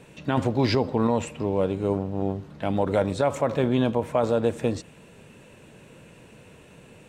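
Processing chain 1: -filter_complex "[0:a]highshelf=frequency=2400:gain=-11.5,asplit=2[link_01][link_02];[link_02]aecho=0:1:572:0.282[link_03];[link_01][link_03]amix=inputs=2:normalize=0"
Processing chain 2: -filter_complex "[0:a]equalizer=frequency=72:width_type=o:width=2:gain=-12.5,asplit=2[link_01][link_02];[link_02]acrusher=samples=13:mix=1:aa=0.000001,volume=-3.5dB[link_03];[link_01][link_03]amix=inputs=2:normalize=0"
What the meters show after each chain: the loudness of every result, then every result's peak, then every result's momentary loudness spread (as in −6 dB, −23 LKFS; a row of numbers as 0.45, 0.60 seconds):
−25.5, −22.5 LKFS; −9.0, −7.0 dBFS; 9, 6 LU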